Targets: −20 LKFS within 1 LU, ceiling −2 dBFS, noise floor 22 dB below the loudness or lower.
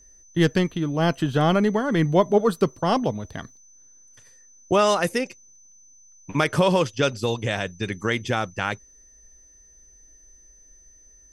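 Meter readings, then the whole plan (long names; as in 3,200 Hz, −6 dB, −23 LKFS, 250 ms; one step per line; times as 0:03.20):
interfering tone 6,100 Hz; level of the tone −51 dBFS; integrated loudness −23.0 LKFS; sample peak −6.0 dBFS; target loudness −20.0 LKFS
→ notch filter 6,100 Hz, Q 30
level +3 dB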